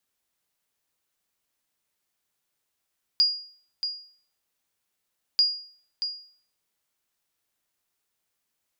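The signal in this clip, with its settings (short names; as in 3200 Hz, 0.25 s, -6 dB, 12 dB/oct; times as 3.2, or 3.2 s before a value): sonar ping 4850 Hz, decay 0.50 s, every 2.19 s, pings 2, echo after 0.63 s, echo -9 dB -13.5 dBFS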